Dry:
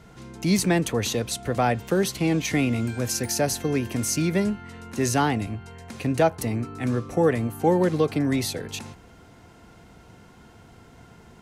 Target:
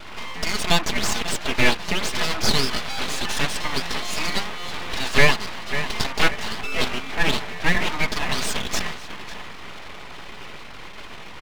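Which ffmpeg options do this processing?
ffmpeg -i in.wav -filter_complex "[0:a]aresample=11025,asoftclip=type=tanh:threshold=-18dB,aresample=44100,alimiter=limit=-24dB:level=0:latency=1:release=422,firequalizer=gain_entry='entry(150,0);entry(240,-28);entry(880,14)':delay=0.05:min_phase=1,anlmdn=0.0398,aecho=1:1:4.7:0.93,adynamicequalizer=threshold=0.00398:dfrequency=310:dqfactor=4.4:tfrequency=310:tqfactor=4.4:attack=5:release=100:ratio=0.375:range=3.5:mode=cutabove:tftype=bell,asplit=2[link_01][link_02];[link_02]adelay=545,lowpass=frequency=1300:poles=1,volume=-8.5dB,asplit=2[link_03][link_04];[link_04]adelay=545,lowpass=frequency=1300:poles=1,volume=0.54,asplit=2[link_05][link_06];[link_06]adelay=545,lowpass=frequency=1300:poles=1,volume=0.54,asplit=2[link_07][link_08];[link_08]adelay=545,lowpass=frequency=1300:poles=1,volume=0.54,asplit=2[link_09][link_10];[link_10]adelay=545,lowpass=frequency=1300:poles=1,volume=0.54,asplit=2[link_11][link_12];[link_12]adelay=545,lowpass=frequency=1300:poles=1,volume=0.54[link_13];[link_03][link_05][link_07][link_09][link_11][link_13]amix=inputs=6:normalize=0[link_14];[link_01][link_14]amix=inputs=2:normalize=0,aeval=exprs='val(0)+0.00316*(sin(2*PI*50*n/s)+sin(2*PI*2*50*n/s)/2+sin(2*PI*3*50*n/s)/3+sin(2*PI*4*50*n/s)/4+sin(2*PI*5*50*n/s)/5)':channel_layout=same,lowpass=2600,aeval=exprs='abs(val(0))':channel_layout=same,volume=5.5dB" out.wav

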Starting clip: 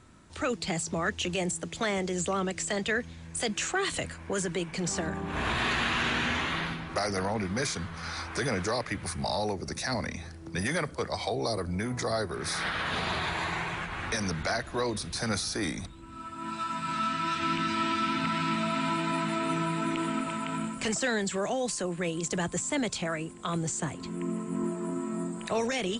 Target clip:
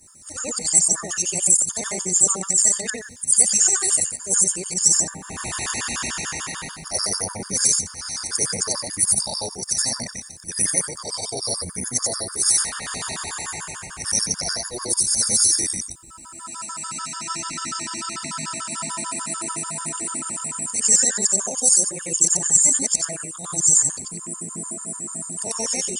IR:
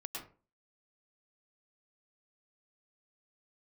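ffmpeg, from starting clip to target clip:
-af "afftfilt=real='re':imag='-im':win_size=8192:overlap=0.75,aexciter=amount=12.1:drive=7.2:freq=5200,afftfilt=real='re*gt(sin(2*PI*6.8*pts/sr)*(1-2*mod(floor(b*sr/1024/920),2)),0)':imag='im*gt(sin(2*PI*6.8*pts/sr)*(1-2*mod(floor(b*sr/1024/920),2)),0)':win_size=1024:overlap=0.75,volume=5dB"

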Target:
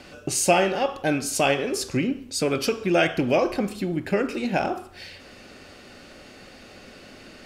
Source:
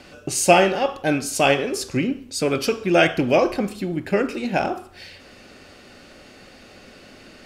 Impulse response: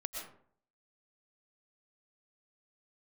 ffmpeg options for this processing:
-af "acompressor=threshold=-23dB:ratio=1.5"

